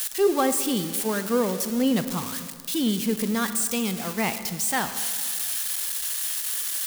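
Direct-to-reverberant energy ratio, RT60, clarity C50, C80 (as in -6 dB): 10.0 dB, 1.9 s, 10.5 dB, 12.0 dB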